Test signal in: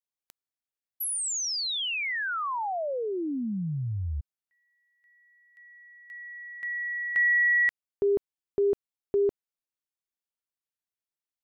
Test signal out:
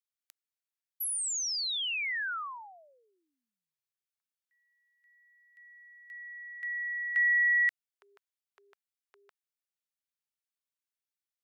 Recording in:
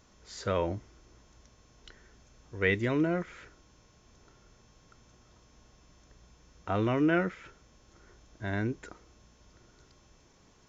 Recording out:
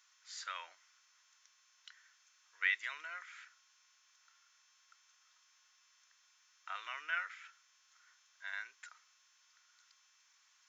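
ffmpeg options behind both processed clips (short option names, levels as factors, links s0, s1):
-af "highpass=f=1300:w=0.5412,highpass=f=1300:w=1.3066,volume=0.75"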